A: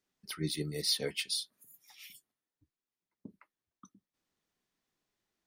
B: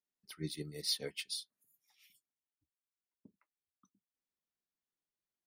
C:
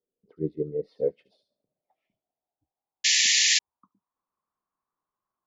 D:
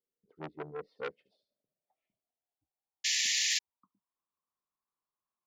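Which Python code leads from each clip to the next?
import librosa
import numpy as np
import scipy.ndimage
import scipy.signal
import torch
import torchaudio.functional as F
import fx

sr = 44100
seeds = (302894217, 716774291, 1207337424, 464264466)

y1 = fx.upward_expand(x, sr, threshold_db=-51.0, expansion=1.5)
y1 = F.gain(torch.from_numpy(y1), -3.5).numpy()
y2 = fx.filter_sweep_lowpass(y1, sr, from_hz=470.0, to_hz=1100.0, start_s=0.6, end_s=4.31, q=7.0)
y2 = fx.echo_wet_highpass(y2, sr, ms=72, feedback_pct=32, hz=5400.0, wet_db=-3.0)
y2 = fx.spec_paint(y2, sr, seeds[0], shape='noise', start_s=3.04, length_s=0.55, low_hz=1700.0, high_hz=7400.0, level_db=-27.0)
y2 = F.gain(torch.from_numpy(y2), 6.0).numpy()
y3 = fx.transformer_sat(y2, sr, knee_hz=3100.0)
y3 = F.gain(torch.from_numpy(y3), -8.5).numpy()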